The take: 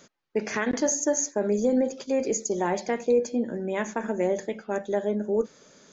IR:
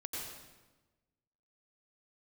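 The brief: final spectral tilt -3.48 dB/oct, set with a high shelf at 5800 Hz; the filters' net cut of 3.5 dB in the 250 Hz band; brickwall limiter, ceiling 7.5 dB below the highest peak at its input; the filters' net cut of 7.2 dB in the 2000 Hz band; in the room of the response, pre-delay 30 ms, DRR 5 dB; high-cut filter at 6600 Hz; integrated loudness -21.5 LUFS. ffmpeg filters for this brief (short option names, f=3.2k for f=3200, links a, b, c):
-filter_complex "[0:a]lowpass=6.6k,equalizer=f=250:t=o:g=-4,equalizer=f=2k:t=o:g=-8.5,highshelf=f=5.8k:g=-3.5,alimiter=limit=-22.5dB:level=0:latency=1,asplit=2[a][b];[1:a]atrim=start_sample=2205,adelay=30[c];[b][c]afir=irnorm=-1:irlink=0,volume=-5.5dB[d];[a][d]amix=inputs=2:normalize=0,volume=10dB"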